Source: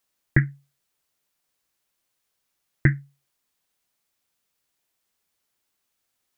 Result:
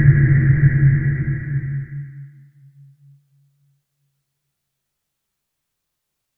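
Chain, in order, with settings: Paulstretch 10×, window 0.50 s, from 0.39 s; tone controls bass +10 dB, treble -1 dB

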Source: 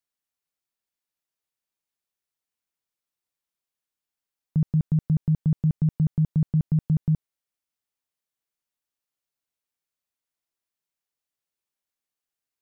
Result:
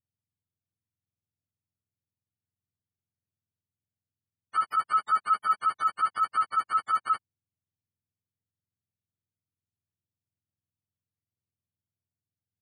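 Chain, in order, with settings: spectrum inverted on a logarithmic axis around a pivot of 450 Hz; 4.86–5.62 s: comb 4.8 ms, depth 40%; trim -1 dB

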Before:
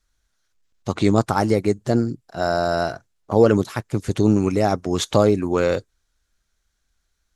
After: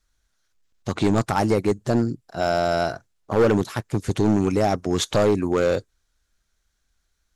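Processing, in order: hard clipper -13 dBFS, distortion -10 dB

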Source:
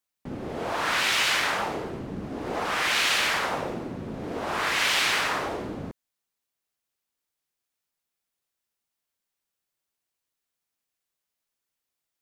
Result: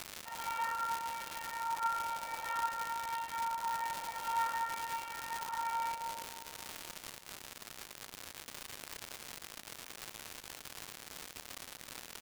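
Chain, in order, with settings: low-pass that closes with the level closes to 370 Hz, closed at -24 dBFS; in parallel at 0 dB: peak limiter -30.5 dBFS, peak gain reduction 10.5 dB; on the sum: frequency shift +470 Hz; feedback comb 460 Hz, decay 0.64 s, mix 100%; three bands offset in time mids, lows, highs 310/460 ms, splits 650/5900 Hz; crackle 220 per s -44 dBFS; on a send: two-band feedback delay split 1.3 kHz, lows 276 ms, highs 113 ms, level -13 dB; on the sum: trim +15.5 dB

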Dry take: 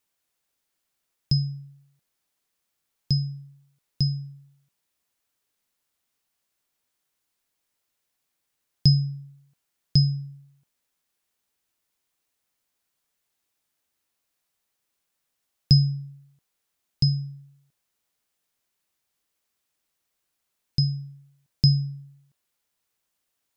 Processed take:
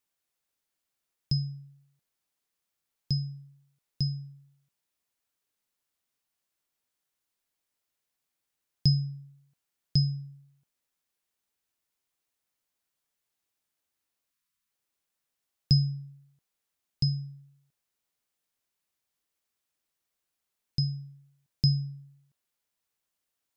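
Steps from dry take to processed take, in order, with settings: spectral selection erased 14.31–14.70 s, 320–940 Hz; trim -5.5 dB

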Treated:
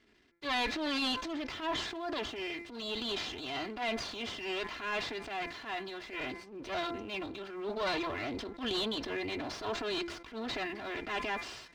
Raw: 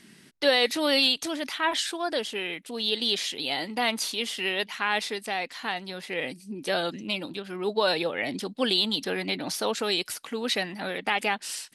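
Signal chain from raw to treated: comb filter that takes the minimum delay 2.9 ms; high-pass 44 Hz; distance through air 140 m; de-hum 170.9 Hz, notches 14; transient shaper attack -10 dB, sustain +5 dB; peaking EQ 10 kHz -6 dB 0.82 oct; waveshaping leveller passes 1; decay stretcher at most 100 dB/s; trim -8 dB

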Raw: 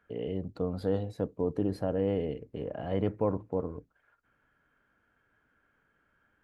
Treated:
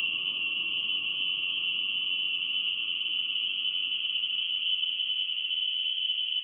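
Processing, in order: high-pass 120 Hz; compressor with a negative ratio -37 dBFS, ratio -1; Paulstretch 49×, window 0.25 s, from 0.33 s; frequency inversion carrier 3.2 kHz; three bands compressed up and down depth 40%; trim +5 dB

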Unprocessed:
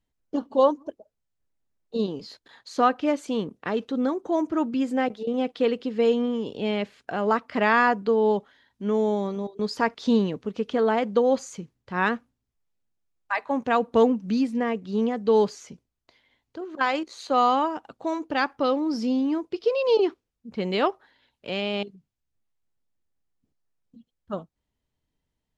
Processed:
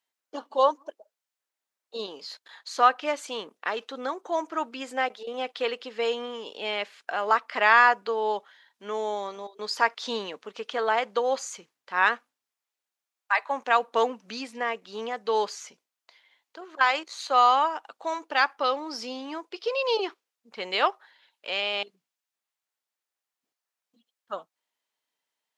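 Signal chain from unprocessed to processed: high-pass 820 Hz 12 dB/octave; trim +4 dB

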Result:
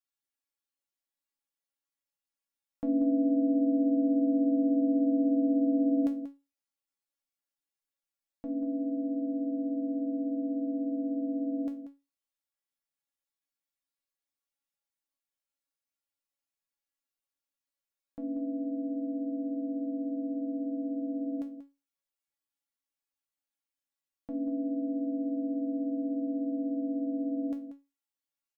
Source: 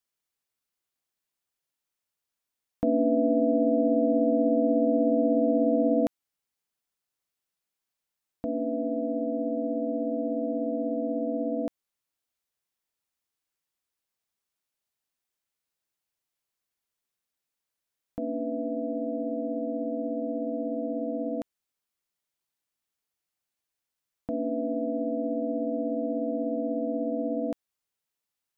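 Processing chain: feedback comb 280 Hz, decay 0.25 s, harmonics all, mix 90%; echo from a far wall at 32 m, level -11 dB; trim +4 dB

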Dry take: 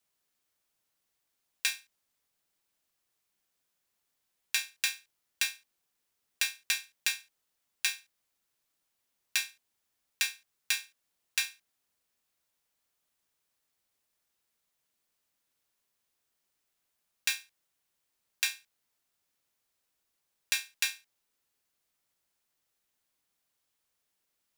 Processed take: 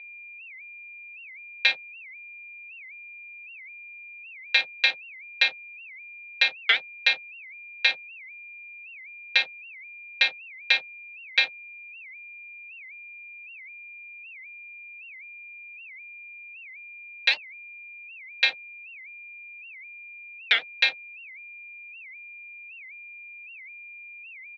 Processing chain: treble shelf 3 kHz -9 dB; comb 4.2 ms, depth 92%; in parallel at -1.5 dB: level held to a coarse grid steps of 19 dB; on the sum: hysteresis with a dead band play -32 dBFS; whistle 2.4 kHz -50 dBFS; cabinet simulation 410–3900 Hz, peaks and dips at 520 Hz +9 dB, 770 Hz +8 dB, 1.2 kHz -7 dB, 2.1 kHz +5 dB, 3.9 kHz +9 dB; warped record 78 rpm, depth 250 cents; trim +6.5 dB

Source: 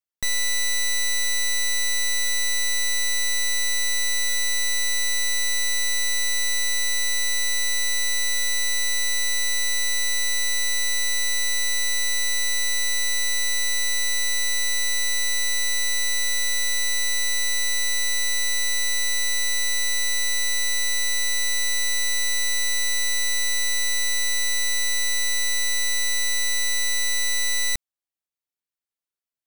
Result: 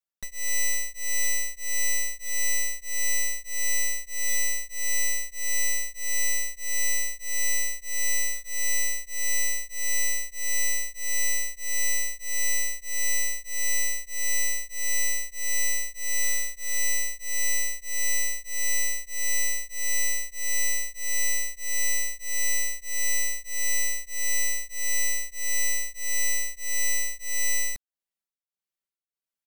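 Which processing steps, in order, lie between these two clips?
comb 5.2 ms, depth 88%; tremolo of two beating tones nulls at 1.6 Hz; trim -3.5 dB

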